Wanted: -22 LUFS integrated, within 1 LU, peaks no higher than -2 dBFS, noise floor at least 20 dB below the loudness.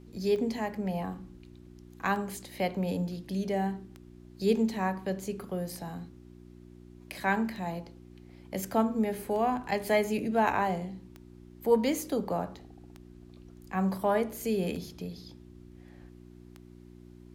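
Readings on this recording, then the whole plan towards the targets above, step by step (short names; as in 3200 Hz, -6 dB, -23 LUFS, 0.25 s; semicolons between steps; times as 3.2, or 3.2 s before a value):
clicks 10; hum 60 Hz; harmonics up to 360 Hz; hum level -50 dBFS; loudness -31.0 LUFS; peak -12.0 dBFS; loudness target -22.0 LUFS
-> de-click; de-hum 60 Hz, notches 6; gain +9 dB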